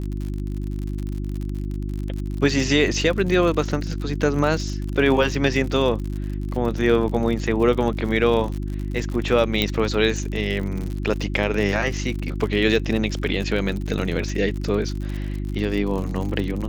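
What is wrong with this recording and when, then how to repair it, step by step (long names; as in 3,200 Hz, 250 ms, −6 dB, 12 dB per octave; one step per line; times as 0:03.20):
surface crackle 59 per second −28 dBFS
mains hum 50 Hz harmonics 7 −27 dBFS
0:09.62: click −6 dBFS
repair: click removal
hum removal 50 Hz, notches 7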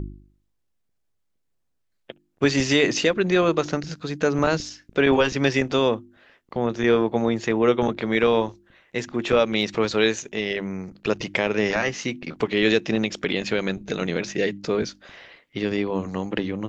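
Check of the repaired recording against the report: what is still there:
0:09.62: click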